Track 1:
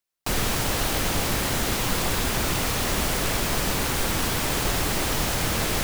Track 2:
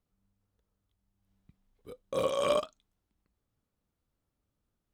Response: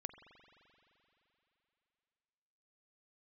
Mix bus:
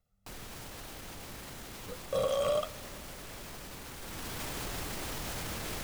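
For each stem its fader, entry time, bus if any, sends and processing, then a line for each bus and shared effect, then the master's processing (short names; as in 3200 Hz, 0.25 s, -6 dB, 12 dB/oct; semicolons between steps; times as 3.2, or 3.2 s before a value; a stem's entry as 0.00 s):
3.95 s -14.5 dB -> 4.39 s -7.5 dB, 0.00 s, no send, limiter -21.5 dBFS, peak gain reduction 9.5 dB
-2.5 dB, 0.00 s, send -8.5 dB, comb 1.5 ms, depth 98%; limiter -21 dBFS, peak gain reduction 10 dB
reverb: on, RT60 3.3 s, pre-delay 43 ms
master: dry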